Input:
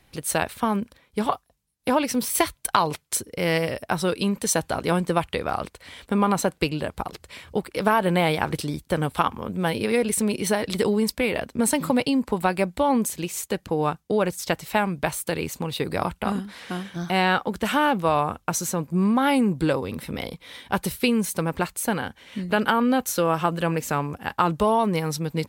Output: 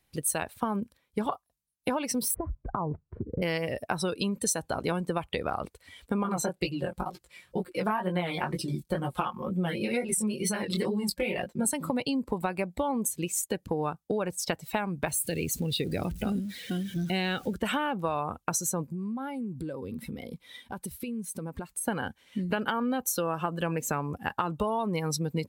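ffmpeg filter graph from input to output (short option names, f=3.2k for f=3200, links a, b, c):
-filter_complex "[0:a]asettb=1/sr,asplit=3[a][b][c];[a]atrim=end=2.344[d];[b]atrim=start=2.34:end=3.42,asetpts=PTS-STARTPTS,afade=t=in:d=0.004:c=qsin,afade=t=out:st=1.076:d=0.004:c=qsin,lowpass=f=1.4k:w=0.5412,lowpass=f=1.4k:w=1.3066,aemphasis=mode=reproduction:type=riaa,acompressor=threshold=-26dB:ratio=4:attack=3.2:release=140:knee=1:detection=peak[e];[c]atrim=start=3.416[f];[d][e]acrossfade=d=0.004:c1=hsin:c2=qsin[g];[g][f]acrossfade=d=0.004:c1=qsin:c2=hsin,asettb=1/sr,asplit=3[h][i][j];[h]atrim=end=6.234[k];[i]atrim=start=6.23:end=11.65,asetpts=PTS-STARTPTS,afade=t=in:d=0.004:c=qsin,afade=t=out:st=5.416:d=0.004:c=qsin,aecho=1:1:5.6:0.68,atrim=end_sample=239022,flanger=delay=15.5:depth=8:speed=2.1[l];[j]atrim=start=11.646[m];[k][l]acrossfade=d=0.004:c1=hsin:c2=qsin[n];[n][m]acrossfade=d=0.004:c1=qsin:c2=hsin,asettb=1/sr,asplit=3[o][p][q];[o]atrim=end=15.084[r];[p]atrim=start=15.08:end=17.54,asetpts=PTS-STARTPTS,afade=t=in:d=0.004:c=qsin,afade=t=out:st=2.456:d=0.004:c=qsin,aeval=exprs='val(0)+0.5*0.0224*sgn(val(0))':c=same,equalizer=f=1k:t=o:w=1.2:g=-13.5[s];[q]atrim=start=17.536[t];[r][s]acrossfade=d=0.004:c1=hsin:c2=qsin[u];[u][t]acrossfade=d=0.004:c1=qsin:c2=hsin,asettb=1/sr,asplit=3[v][w][x];[v]atrim=end=18.874[y];[w]atrim=start=18.87:end=21.88,asetpts=PTS-STARTPTS,afade=t=in:d=0.004:c=qsin,afade=t=out:st=3.006:d=0.004:c=qsin,equalizer=f=230:t=o:w=0.25:g=5.5,acompressor=threshold=-32dB:ratio=8:attack=3.2:release=140:knee=1:detection=peak[z];[x]atrim=start=21.876[aa];[y][z]acrossfade=d=0.004:c1=hsin:c2=qsin[ab];[ab][aa]acrossfade=d=0.004:c1=qsin:c2=hsin,afftdn=nr=15:nf=-34,highshelf=f=5.6k:g=9.5,acompressor=threshold=-26dB:ratio=6"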